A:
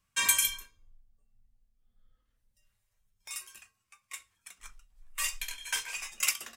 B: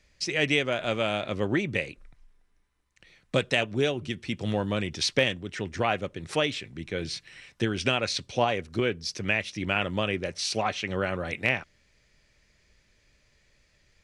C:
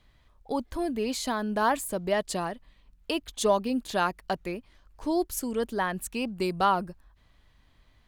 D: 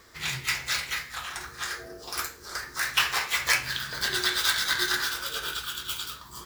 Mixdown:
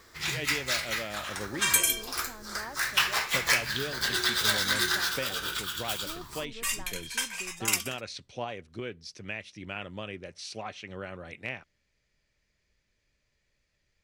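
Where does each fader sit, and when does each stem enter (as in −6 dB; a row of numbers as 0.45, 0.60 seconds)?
+1.5, −11.0, −18.5, −1.0 decibels; 1.45, 0.00, 1.00, 0.00 seconds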